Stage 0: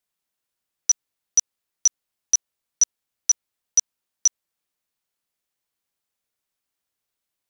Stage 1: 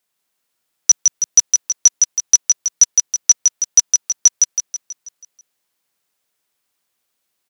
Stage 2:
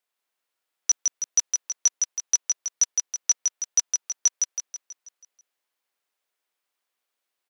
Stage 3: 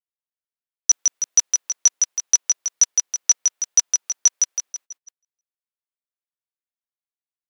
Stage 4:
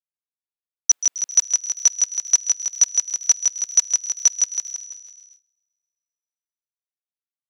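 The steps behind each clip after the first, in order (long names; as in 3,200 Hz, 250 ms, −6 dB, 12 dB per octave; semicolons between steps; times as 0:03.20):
high-pass filter 150 Hz 6 dB per octave; repeating echo 162 ms, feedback 51%, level −4 dB; level +8 dB
bass and treble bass −15 dB, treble −6 dB; level −5.5 dB
noise gate −45 dBFS, range −28 dB; level +5.5 dB
delay with a high-pass on its return 132 ms, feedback 68%, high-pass 2,100 Hz, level −14.5 dB; noise gate with hold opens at −41 dBFS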